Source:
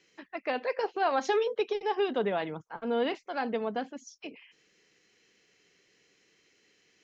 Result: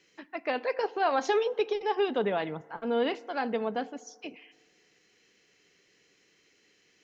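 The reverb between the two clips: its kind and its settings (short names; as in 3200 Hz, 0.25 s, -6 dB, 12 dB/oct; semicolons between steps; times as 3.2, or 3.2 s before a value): FDN reverb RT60 1.7 s, low-frequency decay 0.8×, high-frequency decay 0.4×, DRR 19 dB; gain +1 dB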